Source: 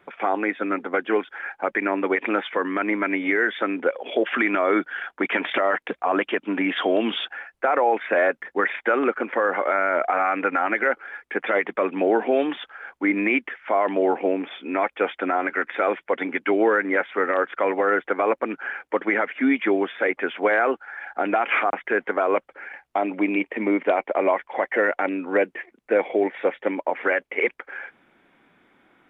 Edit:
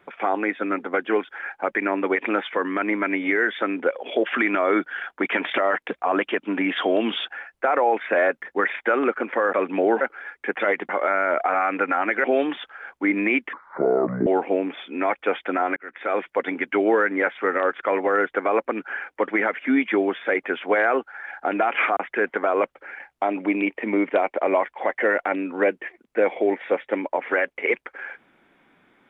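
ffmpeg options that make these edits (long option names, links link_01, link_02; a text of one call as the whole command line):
ffmpeg -i in.wav -filter_complex "[0:a]asplit=8[link_01][link_02][link_03][link_04][link_05][link_06][link_07][link_08];[link_01]atrim=end=9.532[link_09];[link_02]atrim=start=11.758:end=12.242[link_10];[link_03]atrim=start=10.878:end=11.762[link_11];[link_04]atrim=start=9.528:end=10.882[link_12];[link_05]atrim=start=12.238:end=13.534[link_13];[link_06]atrim=start=13.53:end=14,asetpts=PTS-STARTPTS,asetrate=28224,aresample=44100[link_14];[link_07]atrim=start=13.996:end=15.5,asetpts=PTS-STARTPTS,afade=type=out:start_time=1.5:duration=0.004:curve=hsin[link_15];[link_08]atrim=start=15.5,asetpts=PTS-STARTPTS,afade=type=in:duration=0.46[link_16];[link_09][link_10]acrossfade=duration=0.004:curve1=hsin:curve2=hsin[link_17];[link_17][link_11]acrossfade=duration=0.004:curve1=hsin:curve2=hsin[link_18];[link_18][link_12]acrossfade=duration=0.004:curve1=hsin:curve2=hsin[link_19];[link_19][link_13]acrossfade=duration=0.004:curve1=hsin:curve2=hsin[link_20];[link_20][link_14]acrossfade=duration=0.004:curve1=hsin:curve2=hsin[link_21];[link_15][link_16]concat=n=2:v=0:a=1[link_22];[link_21][link_22]acrossfade=duration=0.004:curve1=hsin:curve2=hsin" out.wav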